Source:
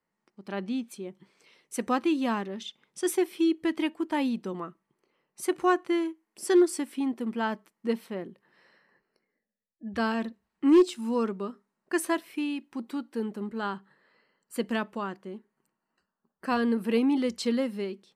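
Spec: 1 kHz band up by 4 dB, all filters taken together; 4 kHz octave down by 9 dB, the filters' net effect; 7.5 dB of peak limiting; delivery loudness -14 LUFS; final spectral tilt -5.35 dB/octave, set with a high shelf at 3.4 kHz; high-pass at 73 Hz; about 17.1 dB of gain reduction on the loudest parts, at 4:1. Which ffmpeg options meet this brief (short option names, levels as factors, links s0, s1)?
-af "highpass=73,equalizer=f=1000:t=o:g=6,highshelf=f=3400:g=-7,equalizer=f=4000:t=o:g=-8.5,acompressor=threshold=0.0141:ratio=4,volume=26.6,alimiter=limit=0.668:level=0:latency=1"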